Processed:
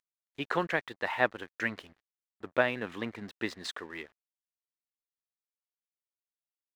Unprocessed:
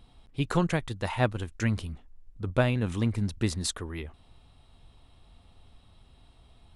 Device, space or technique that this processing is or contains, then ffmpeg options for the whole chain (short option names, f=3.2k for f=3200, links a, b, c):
pocket radio on a weak battery: -af "highpass=370,lowpass=3.6k,aeval=exprs='sgn(val(0))*max(abs(val(0))-0.00178,0)':c=same,equalizer=f=1.8k:t=o:w=0.41:g=7.5"